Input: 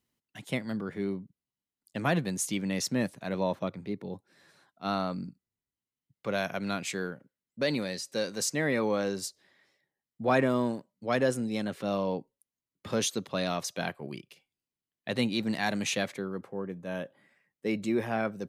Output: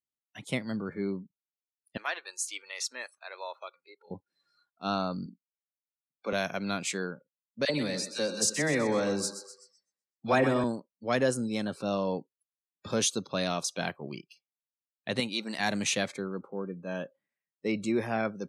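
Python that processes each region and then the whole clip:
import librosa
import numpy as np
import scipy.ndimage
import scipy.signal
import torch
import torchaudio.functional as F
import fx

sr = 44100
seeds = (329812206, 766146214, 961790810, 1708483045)

y = fx.chain(x, sr, fx.highpass(hz=1100.0, slope=12),
    fx.high_shelf(hz=4700.0, db=-7.0), at=(1.97, 4.11))
y = fx.chain(y, sr, fx.highpass(hz=200.0, slope=24),
    fx.doubler(ms=44.0, db=-11.0), at=(5.26, 6.33))
y = fx.chain(y, sr, fx.dispersion(late='lows', ms=46.0, hz=990.0),
    fx.echo_split(split_hz=750.0, low_ms=89, high_ms=126, feedback_pct=52, wet_db=-10.5), at=(7.65, 10.64))
y = fx.chain(y, sr, fx.highpass(hz=53.0, slope=12),
    fx.low_shelf(hz=370.0, db=-10.5), at=(15.2, 15.6))
y = scipy.signal.sosfilt(scipy.signal.butter(4, 10000.0, 'lowpass', fs=sr, output='sos'), y)
y = fx.noise_reduce_blind(y, sr, reduce_db=24)
y = fx.high_shelf(y, sr, hz=5800.0, db=7.0)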